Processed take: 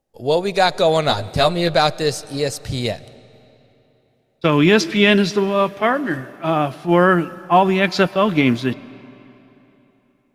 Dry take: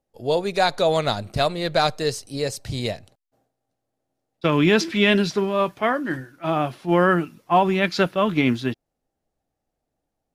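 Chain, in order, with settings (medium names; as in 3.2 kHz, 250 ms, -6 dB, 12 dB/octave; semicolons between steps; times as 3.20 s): 1.08–1.74 s: doubling 12 ms -3 dB; algorithmic reverb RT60 3.4 s, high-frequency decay 0.8×, pre-delay 80 ms, DRR 20 dB; trim +4 dB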